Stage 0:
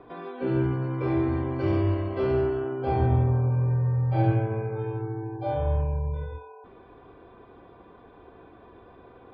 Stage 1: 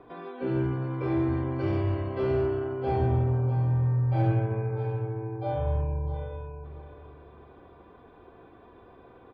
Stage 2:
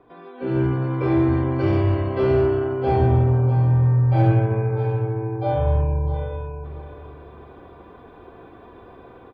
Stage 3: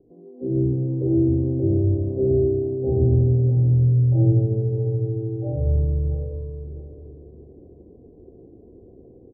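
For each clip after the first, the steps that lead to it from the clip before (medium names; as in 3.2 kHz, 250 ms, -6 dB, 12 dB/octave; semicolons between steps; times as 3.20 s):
in parallel at -5.5 dB: hard clipper -20 dBFS, distortion -16 dB; on the sum: feedback delay 651 ms, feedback 25%, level -12 dB; trim -6 dB
level rider gain up to 11 dB; trim -3 dB
inverse Chebyshev low-pass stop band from 1.2 kHz, stop band 50 dB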